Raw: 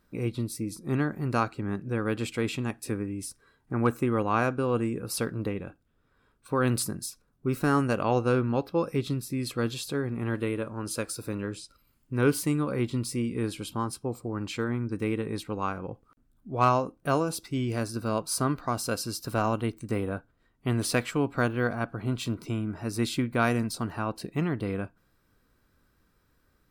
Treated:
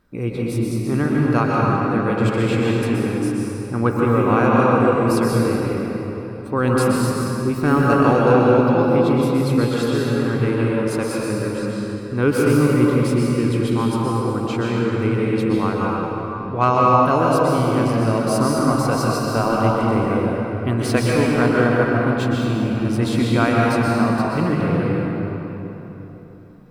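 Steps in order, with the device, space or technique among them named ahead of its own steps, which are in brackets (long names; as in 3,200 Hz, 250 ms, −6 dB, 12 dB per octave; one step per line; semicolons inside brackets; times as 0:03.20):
swimming-pool hall (convolution reverb RT60 3.5 s, pre-delay 115 ms, DRR −4 dB; high-shelf EQ 4,200 Hz −8 dB)
level +5.5 dB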